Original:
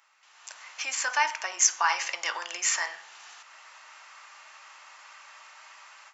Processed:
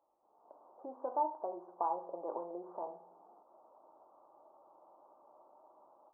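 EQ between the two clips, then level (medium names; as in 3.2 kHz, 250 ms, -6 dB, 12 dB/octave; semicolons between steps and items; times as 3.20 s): Gaussian low-pass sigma 16 samples; +12.0 dB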